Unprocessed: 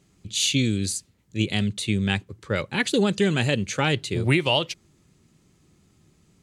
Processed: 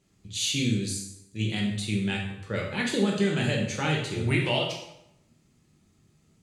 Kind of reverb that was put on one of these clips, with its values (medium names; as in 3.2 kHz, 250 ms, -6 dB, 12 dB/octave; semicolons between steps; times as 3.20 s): plate-style reverb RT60 0.8 s, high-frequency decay 0.8×, DRR -2 dB; trim -8 dB